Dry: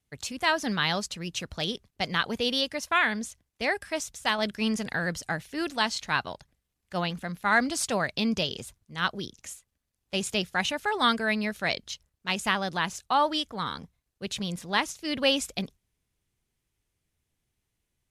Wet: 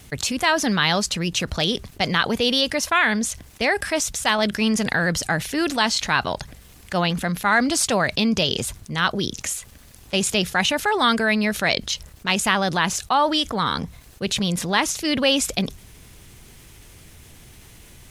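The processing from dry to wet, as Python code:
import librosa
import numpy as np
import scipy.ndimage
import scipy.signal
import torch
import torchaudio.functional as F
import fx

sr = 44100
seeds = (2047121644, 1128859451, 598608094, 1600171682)

y = fx.env_flatten(x, sr, amount_pct=50)
y = y * 10.0 ** (3.5 / 20.0)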